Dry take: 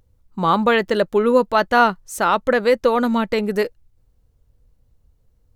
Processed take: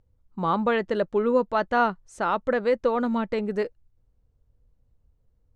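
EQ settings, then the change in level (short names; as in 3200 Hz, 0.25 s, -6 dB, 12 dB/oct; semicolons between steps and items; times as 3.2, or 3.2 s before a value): LPF 8900 Hz 24 dB/oct; high shelf 2700 Hz -10 dB; -6.0 dB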